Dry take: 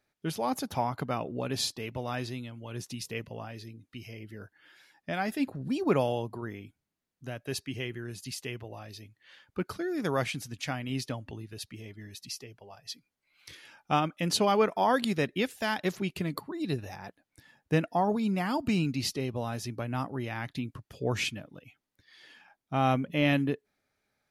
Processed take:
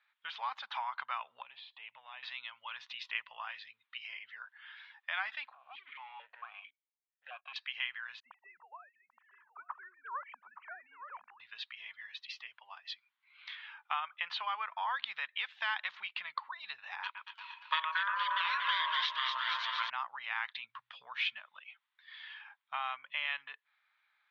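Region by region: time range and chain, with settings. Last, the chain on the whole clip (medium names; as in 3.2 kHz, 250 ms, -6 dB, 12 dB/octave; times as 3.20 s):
1.42–2.23 s: peaking EQ 1.4 kHz -14 dB 1.2 oct + compression 12:1, threshold -39 dBFS + low-pass 3.2 kHz 24 dB/octave
5.53–7.56 s: compression 3:1, threshold -33 dBFS + waveshaping leveller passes 3 + stepped vowel filter 4.5 Hz
8.20–11.40 s: formants replaced by sine waves + Bessel low-pass 910 Hz, order 4 + delay 871 ms -12 dB
13.53–14.94 s: low-pass 2.7 kHz 6 dB/octave + bass shelf 160 Hz -11.5 dB
17.03–19.90 s: frequency weighting D + echo whose repeats swap between lows and highs 117 ms, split 1.7 kHz, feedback 76%, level -4 dB + ring modulator 790 Hz
20.64–21.40 s: peaking EQ 170 Hz +9 dB 1.5 oct + de-hum 60.78 Hz, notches 2
whole clip: compression, threshold -33 dBFS; elliptic band-pass 980–3600 Hz, stop band 50 dB; trim +7 dB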